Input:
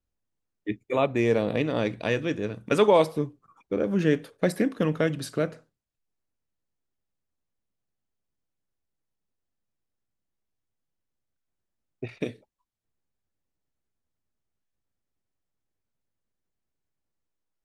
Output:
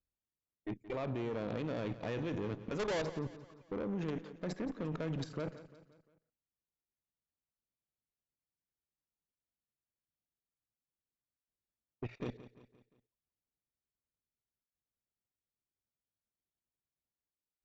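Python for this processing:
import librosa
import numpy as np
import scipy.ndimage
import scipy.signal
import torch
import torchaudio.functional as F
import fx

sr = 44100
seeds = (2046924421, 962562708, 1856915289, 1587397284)

y = fx.high_shelf(x, sr, hz=2100.0, db=-6.5)
y = fx.level_steps(y, sr, step_db=19)
y = fx.tube_stage(y, sr, drive_db=38.0, bias=0.5)
y = fx.brickwall_lowpass(y, sr, high_hz=7700.0)
y = fx.echo_feedback(y, sr, ms=174, feedback_pct=48, wet_db=-15.0)
y = y * 10.0 ** (5.0 / 20.0)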